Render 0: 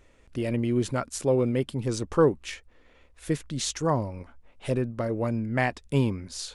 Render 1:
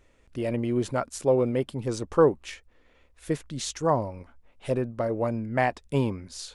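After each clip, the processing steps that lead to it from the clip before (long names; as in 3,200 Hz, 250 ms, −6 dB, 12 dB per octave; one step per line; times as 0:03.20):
dynamic equaliser 720 Hz, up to +7 dB, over −38 dBFS, Q 0.78
level −3 dB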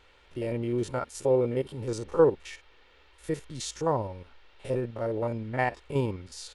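spectrum averaged block by block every 50 ms
noise in a band 300–3,600 Hz −61 dBFS
comb filter 2.2 ms, depth 34%
level −2 dB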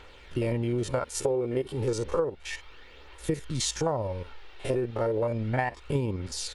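phase shifter 0.32 Hz, delay 2.9 ms, feedback 35%
downward compressor 16 to 1, threshold −31 dBFS, peak gain reduction 17.5 dB
level +7.5 dB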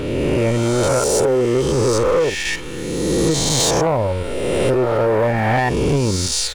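peak hold with a rise ahead of every peak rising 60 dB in 1.74 s
in parallel at −1 dB: brickwall limiter −20.5 dBFS, peak gain reduction 10 dB
on the sum: leveller curve on the samples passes 2
level −1 dB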